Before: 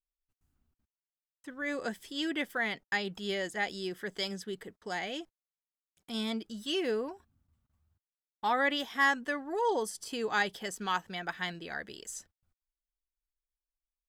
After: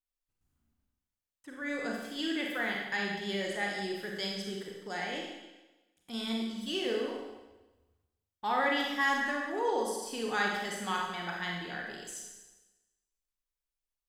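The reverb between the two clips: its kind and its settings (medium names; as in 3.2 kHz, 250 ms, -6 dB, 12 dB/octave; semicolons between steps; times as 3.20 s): Schroeder reverb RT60 1.1 s, combs from 31 ms, DRR -1.5 dB; trim -3.5 dB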